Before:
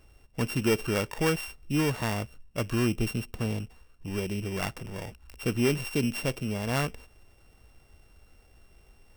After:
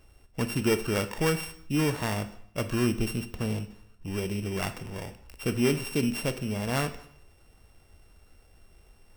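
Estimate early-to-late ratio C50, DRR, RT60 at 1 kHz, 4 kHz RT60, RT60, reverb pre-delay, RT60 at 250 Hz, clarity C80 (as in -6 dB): 13.5 dB, 10.0 dB, 0.65 s, 0.65 s, 0.70 s, 6 ms, 0.70 s, 16.5 dB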